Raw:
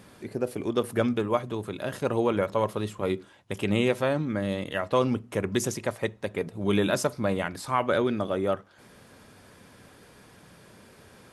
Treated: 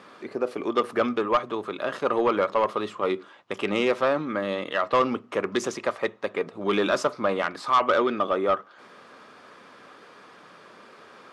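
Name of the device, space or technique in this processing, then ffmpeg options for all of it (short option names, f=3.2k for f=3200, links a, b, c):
intercom: -af "highpass=320,lowpass=4.5k,equalizer=f=1.2k:t=o:w=0.3:g=10,asoftclip=type=tanh:threshold=-17.5dB,volume=4.5dB"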